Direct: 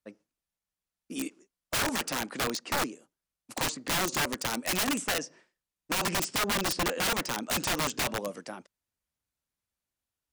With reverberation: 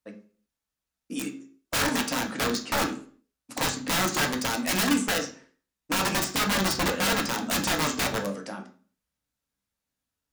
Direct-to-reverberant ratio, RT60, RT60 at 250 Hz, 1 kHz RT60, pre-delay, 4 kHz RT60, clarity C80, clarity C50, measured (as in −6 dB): 2.0 dB, 0.45 s, 0.50 s, 0.40 s, 3 ms, 0.35 s, 16.0 dB, 11.0 dB